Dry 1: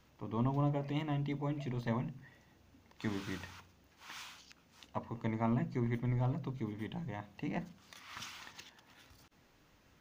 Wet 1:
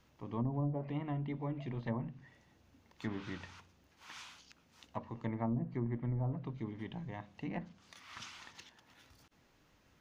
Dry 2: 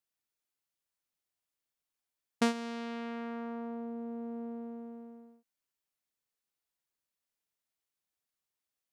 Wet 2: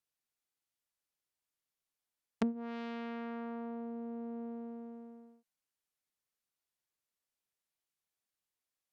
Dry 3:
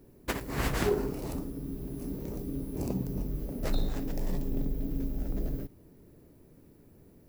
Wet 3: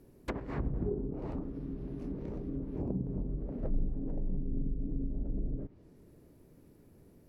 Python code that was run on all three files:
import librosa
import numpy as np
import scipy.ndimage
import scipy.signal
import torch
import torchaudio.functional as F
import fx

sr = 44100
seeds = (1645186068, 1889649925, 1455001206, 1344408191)

y = fx.env_lowpass_down(x, sr, base_hz=310.0, full_db=-26.5)
y = y * librosa.db_to_amplitude(-2.0)